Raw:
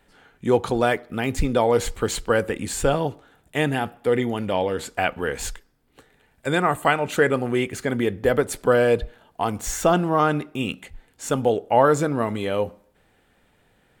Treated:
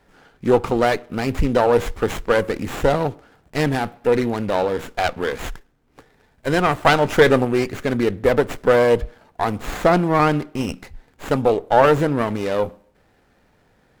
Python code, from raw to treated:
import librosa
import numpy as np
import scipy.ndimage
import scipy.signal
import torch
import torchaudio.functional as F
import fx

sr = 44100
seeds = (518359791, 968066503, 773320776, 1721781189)

y = fx.leveller(x, sr, passes=1, at=(6.85, 7.45))
y = fx.running_max(y, sr, window=9)
y = F.gain(torch.from_numpy(y), 3.5).numpy()